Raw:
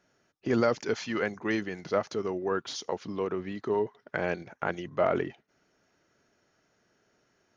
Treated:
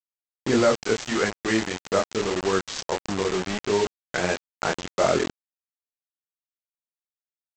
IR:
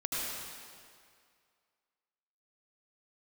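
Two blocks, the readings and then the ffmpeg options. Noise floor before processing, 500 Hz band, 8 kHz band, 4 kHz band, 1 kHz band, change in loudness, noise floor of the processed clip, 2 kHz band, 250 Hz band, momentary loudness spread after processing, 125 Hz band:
-72 dBFS, +5.0 dB, no reading, +11.0 dB, +6.0 dB, +6.0 dB, under -85 dBFS, +6.5 dB, +5.5 dB, 7 LU, +5.0 dB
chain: -af "flanger=delay=20:depth=6.9:speed=1.6,aresample=16000,acrusher=bits=5:mix=0:aa=0.000001,aresample=44100,volume=2.51"

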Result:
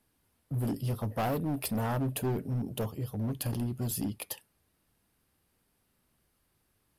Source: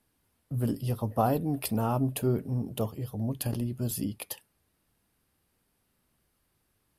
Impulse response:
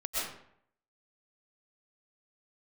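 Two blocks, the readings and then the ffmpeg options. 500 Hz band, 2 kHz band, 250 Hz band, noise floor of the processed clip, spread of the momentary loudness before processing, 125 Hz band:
-4.0 dB, +2.5 dB, -2.5 dB, -75 dBFS, 8 LU, -2.0 dB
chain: -af "asoftclip=type=hard:threshold=0.0447"

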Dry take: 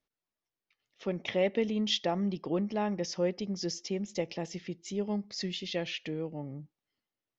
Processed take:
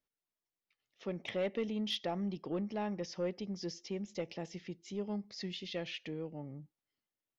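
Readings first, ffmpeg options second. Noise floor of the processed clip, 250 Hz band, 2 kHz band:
under -85 dBFS, -5.5 dB, -6.0 dB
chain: -filter_complex "[0:a]acrossover=split=5600[s0][s1];[s1]acompressor=threshold=0.00141:ratio=4:attack=1:release=60[s2];[s0][s2]amix=inputs=2:normalize=0,asoftclip=type=tanh:threshold=0.0891,volume=0.562"

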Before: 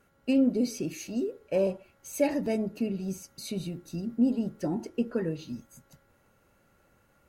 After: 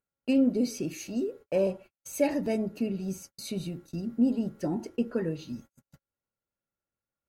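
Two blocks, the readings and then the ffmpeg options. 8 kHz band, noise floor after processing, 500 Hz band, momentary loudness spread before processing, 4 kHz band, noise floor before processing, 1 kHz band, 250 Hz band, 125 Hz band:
0.0 dB, under -85 dBFS, 0.0 dB, 12 LU, 0.0 dB, -66 dBFS, 0.0 dB, 0.0 dB, 0.0 dB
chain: -af "acompressor=mode=upward:threshold=0.01:ratio=2.5,agate=range=0.00794:threshold=0.00501:ratio=16:detection=peak"

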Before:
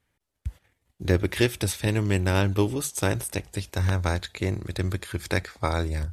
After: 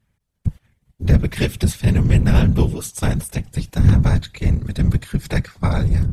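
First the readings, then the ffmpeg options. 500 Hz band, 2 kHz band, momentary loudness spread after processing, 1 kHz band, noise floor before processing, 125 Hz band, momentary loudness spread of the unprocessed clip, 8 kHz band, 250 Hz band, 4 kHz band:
-0.5 dB, +0.5 dB, 11 LU, +0.5 dB, -79 dBFS, +10.0 dB, 9 LU, +0.5 dB, +7.5 dB, +0.5 dB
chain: -af "lowshelf=f=140:t=q:w=1.5:g=9.5,afftfilt=real='hypot(re,im)*cos(2*PI*random(0))':imag='hypot(re,im)*sin(2*PI*random(1))':win_size=512:overlap=0.75,volume=2.11"

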